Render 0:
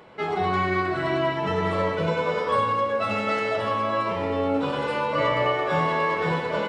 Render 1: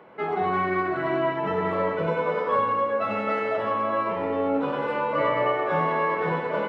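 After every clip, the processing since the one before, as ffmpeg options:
ffmpeg -i in.wav -filter_complex "[0:a]acrossover=split=150 2500:gain=0.224 1 0.141[link_01][link_02][link_03];[link_01][link_02][link_03]amix=inputs=3:normalize=0" out.wav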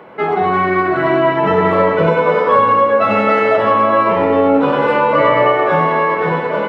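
ffmpeg -i in.wav -filter_complex "[0:a]asplit=2[link_01][link_02];[link_02]alimiter=limit=-19dB:level=0:latency=1:release=253,volume=2dB[link_03];[link_01][link_03]amix=inputs=2:normalize=0,dynaudnorm=framelen=250:gausssize=9:maxgain=3.5dB,volume=4dB" out.wav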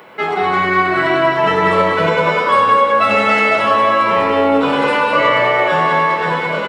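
ffmpeg -i in.wav -filter_complex "[0:a]crystalizer=i=8:c=0,asplit=2[link_01][link_02];[link_02]aecho=0:1:195:0.501[link_03];[link_01][link_03]amix=inputs=2:normalize=0,volume=-5dB" out.wav

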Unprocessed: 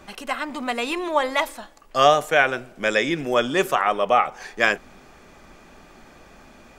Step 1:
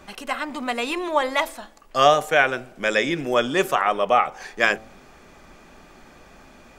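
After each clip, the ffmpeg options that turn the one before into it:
ffmpeg -i in.wav -af "bandreject=frequency=110:width_type=h:width=4,bandreject=frequency=220:width_type=h:width=4,bandreject=frequency=330:width_type=h:width=4,bandreject=frequency=440:width_type=h:width=4,bandreject=frequency=550:width_type=h:width=4,bandreject=frequency=660:width_type=h:width=4,bandreject=frequency=770:width_type=h:width=4" out.wav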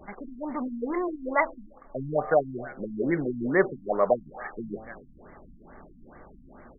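ffmpeg -i in.wav -af "aecho=1:1:268|536:0.0631|0.0215,afftfilt=real='re*lt(b*sr/1024,270*pow(2300/270,0.5+0.5*sin(2*PI*2.3*pts/sr)))':imag='im*lt(b*sr/1024,270*pow(2300/270,0.5+0.5*sin(2*PI*2.3*pts/sr)))':win_size=1024:overlap=0.75" out.wav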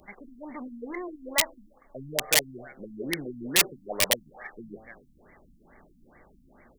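ffmpeg -i in.wav -af "aeval=exprs='(mod(5.01*val(0)+1,2)-1)/5.01':channel_layout=same,aexciter=amount=3.1:drive=8.6:freq=2000,volume=-7.5dB" out.wav

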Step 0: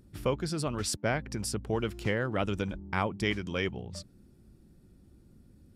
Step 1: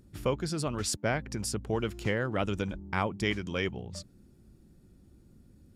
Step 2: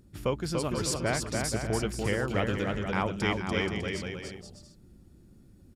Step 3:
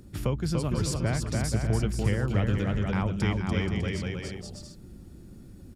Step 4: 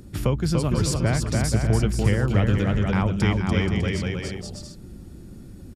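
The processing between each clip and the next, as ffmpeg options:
ffmpeg -i in.wav -af "equalizer=frequency=6800:width=7.4:gain=4.5" out.wav
ffmpeg -i in.wav -af "aecho=1:1:290|478.5|601|680.7|732.4:0.631|0.398|0.251|0.158|0.1" out.wav
ffmpeg -i in.wav -filter_complex "[0:a]acrossover=split=190[link_01][link_02];[link_02]acompressor=threshold=-49dB:ratio=2[link_03];[link_01][link_03]amix=inputs=2:normalize=0,volume=8.5dB" out.wav
ffmpeg -i in.wav -af "aresample=32000,aresample=44100,volume=5.5dB" out.wav

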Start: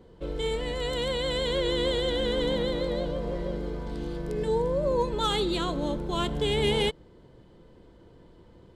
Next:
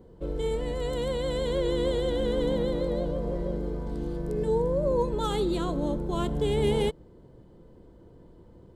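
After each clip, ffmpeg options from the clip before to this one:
ffmpeg -i in.wav -af "equalizer=frequency=3000:width=0.45:gain=-11,volume=2dB" out.wav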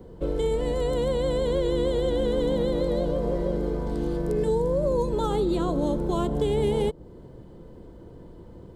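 ffmpeg -i in.wav -filter_complex "[0:a]acrossover=split=260|1200|3300[link_01][link_02][link_03][link_04];[link_01]acompressor=threshold=-35dB:ratio=4[link_05];[link_02]acompressor=threshold=-31dB:ratio=4[link_06];[link_03]acompressor=threshold=-56dB:ratio=4[link_07];[link_04]acompressor=threshold=-53dB:ratio=4[link_08];[link_05][link_06][link_07][link_08]amix=inputs=4:normalize=0,volume=7dB" out.wav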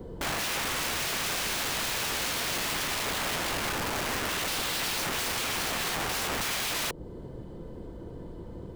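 ffmpeg -i in.wav -af "aeval=exprs='(mod(29.9*val(0)+1,2)-1)/29.9':channel_layout=same,volume=3.5dB" out.wav

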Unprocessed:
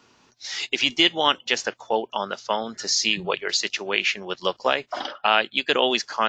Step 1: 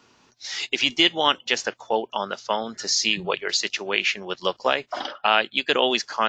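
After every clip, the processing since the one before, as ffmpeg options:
ffmpeg -i in.wav -af anull out.wav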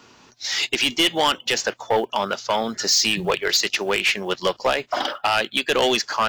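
ffmpeg -i in.wav -filter_complex "[0:a]asplit=2[link_01][link_02];[link_02]alimiter=limit=-11dB:level=0:latency=1:release=185,volume=2.5dB[link_03];[link_01][link_03]amix=inputs=2:normalize=0,acrusher=bits=8:mode=log:mix=0:aa=0.000001,asoftclip=type=tanh:threshold=-12dB" out.wav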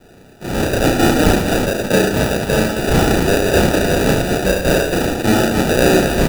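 ffmpeg -i in.wav -filter_complex "[0:a]asplit=2[link_01][link_02];[link_02]aecho=0:1:69|138|207|276|345|414:0.562|0.253|0.114|0.0512|0.0231|0.0104[link_03];[link_01][link_03]amix=inputs=2:normalize=0,acrusher=samples=41:mix=1:aa=0.000001,asplit=2[link_04][link_05];[link_05]aecho=0:1:32.07|110.8|198.3|268.2:1|0.316|0.251|0.562[link_06];[link_04][link_06]amix=inputs=2:normalize=0,volume=2.5dB" out.wav

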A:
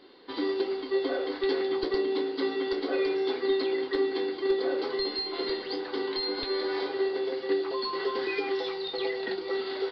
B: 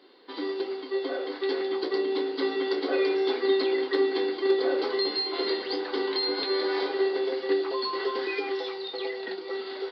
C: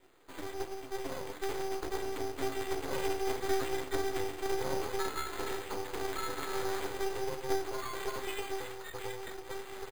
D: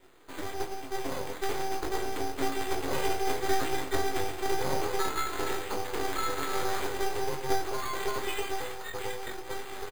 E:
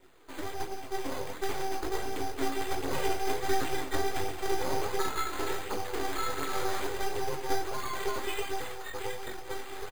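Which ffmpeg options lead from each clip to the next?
ffmpeg -i in.wav -af "highpass=250,dynaudnorm=framelen=320:gausssize=13:maxgain=5dB,volume=-1.5dB" out.wav
ffmpeg -i in.wav -af "flanger=delay=7.9:depth=4.2:regen=-43:speed=1.2:shape=sinusoidal,aresample=16000,aeval=exprs='max(val(0),0)':channel_layout=same,aresample=44100,acrusher=samples=8:mix=1:aa=0.000001" out.wav
ffmpeg -i in.wav -filter_complex "[0:a]asplit=2[link_01][link_02];[link_02]adelay=22,volume=-7dB[link_03];[link_01][link_03]amix=inputs=2:normalize=0,volume=4.5dB" out.wav
ffmpeg -i in.wav -af "flanger=delay=0.1:depth=3.7:regen=-40:speed=1.4:shape=triangular,volume=2.5dB" out.wav

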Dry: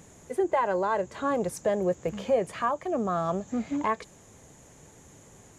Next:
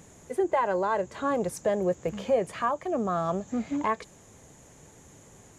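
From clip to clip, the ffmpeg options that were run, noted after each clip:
ffmpeg -i in.wav -af anull out.wav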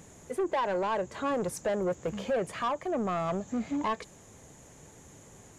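ffmpeg -i in.wav -af "asoftclip=type=tanh:threshold=-24dB" out.wav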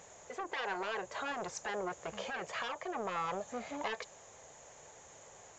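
ffmpeg -i in.wav -af "lowshelf=frequency=400:width_type=q:width=1.5:gain=-12.5,afftfilt=real='re*lt(hypot(re,im),0.158)':imag='im*lt(hypot(re,im),0.158)':win_size=1024:overlap=0.75,aresample=16000,aresample=44100" out.wav

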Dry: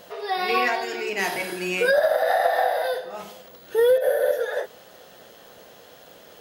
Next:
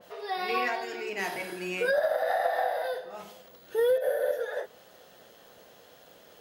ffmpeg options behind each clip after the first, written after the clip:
ffmpeg -i in.wav -af "adynamicequalizer=threshold=0.01:dfrequency=2700:dqfactor=0.7:tfrequency=2700:tqfactor=0.7:attack=5:release=100:ratio=0.375:range=1.5:mode=cutabove:tftype=highshelf,volume=-6.5dB" out.wav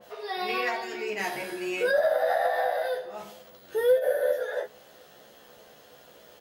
ffmpeg -i in.wav -filter_complex "[0:a]asplit=2[link_01][link_02];[link_02]adelay=14,volume=-3dB[link_03];[link_01][link_03]amix=inputs=2:normalize=0" out.wav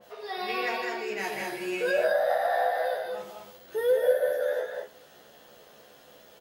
ffmpeg -i in.wav -af "aecho=1:1:154.5|204.1:0.355|0.631,volume=-2.5dB" out.wav

